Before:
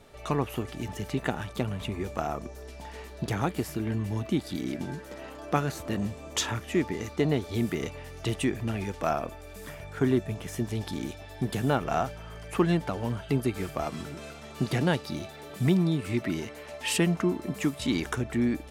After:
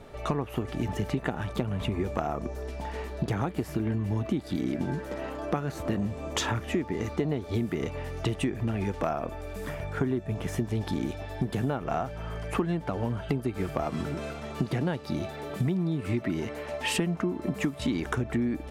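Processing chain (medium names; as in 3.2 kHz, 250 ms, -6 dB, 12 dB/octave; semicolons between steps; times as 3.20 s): treble shelf 2.6 kHz -10 dB; compression 10:1, threshold -32 dBFS, peak gain reduction 14 dB; trim +7.5 dB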